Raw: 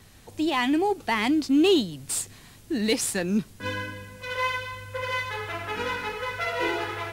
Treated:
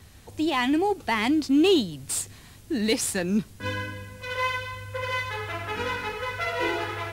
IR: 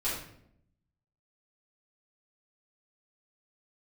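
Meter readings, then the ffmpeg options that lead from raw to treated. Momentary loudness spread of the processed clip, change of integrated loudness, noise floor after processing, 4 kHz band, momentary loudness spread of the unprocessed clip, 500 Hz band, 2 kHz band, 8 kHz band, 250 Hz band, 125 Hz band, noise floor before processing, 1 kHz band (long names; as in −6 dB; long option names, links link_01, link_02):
12 LU, 0.0 dB, −49 dBFS, 0.0 dB, 12 LU, 0.0 dB, 0.0 dB, 0.0 dB, 0.0 dB, +2.0 dB, −50 dBFS, 0.0 dB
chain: -af "equalizer=frequency=75:width=2.3:gain=8.5"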